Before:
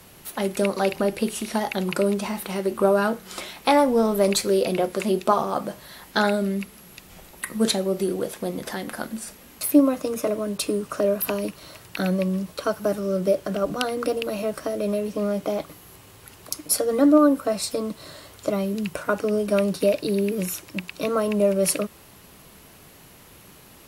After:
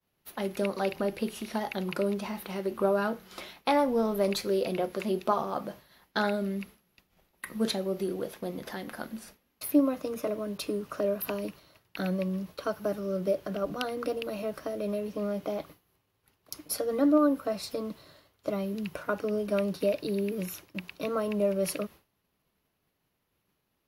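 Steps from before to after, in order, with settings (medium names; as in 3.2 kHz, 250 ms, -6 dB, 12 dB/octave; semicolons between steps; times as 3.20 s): expander -35 dBFS; peaking EQ 8.2 kHz -12 dB 0.57 oct; trim -7 dB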